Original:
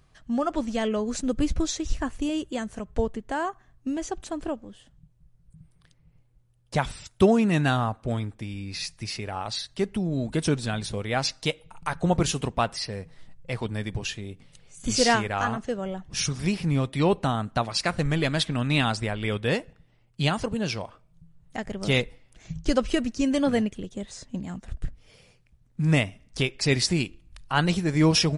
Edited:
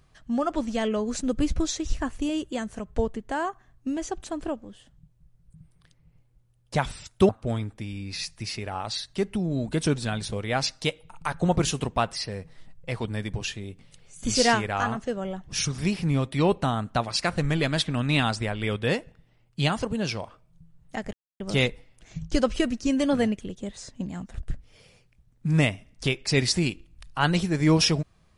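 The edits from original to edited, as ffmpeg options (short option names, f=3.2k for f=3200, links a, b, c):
-filter_complex "[0:a]asplit=3[a][b][c];[a]atrim=end=7.292[d];[b]atrim=start=7.898:end=21.74,asetpts=PTS-STARTPTS,afade=t=out:st=13.838:d=0.004:c=hsin,apad=pad_dur=0.27[e];[c]atrim=start=21.74,asetpts=PTS-STARTPTS,afade=t=in:d=0.004:c=hsin[f];[e][f]concat=n=2:v=0:a=1[g];[d][g]acrossfade=d=0.004:c1=hsin:c2=hsin"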